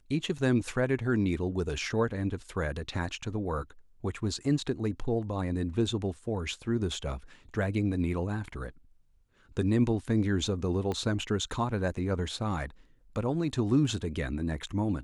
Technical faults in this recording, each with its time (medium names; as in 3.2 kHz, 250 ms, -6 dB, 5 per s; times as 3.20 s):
10.92 s: pop -21 dBFS